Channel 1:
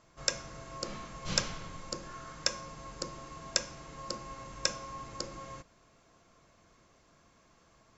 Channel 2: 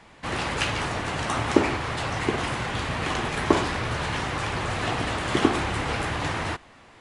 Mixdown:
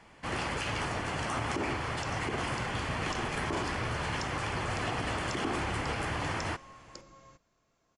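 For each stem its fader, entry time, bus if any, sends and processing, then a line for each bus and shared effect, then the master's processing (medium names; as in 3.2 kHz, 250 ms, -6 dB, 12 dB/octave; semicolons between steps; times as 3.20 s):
-10.5 dB, 1.75 s, no send, none
-5.0 dB, 0.00 s, no send, band-stop 3.8 kHz, Q 7.9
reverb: none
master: peak limiter -23 dBFS, peak gain reduction 15 dB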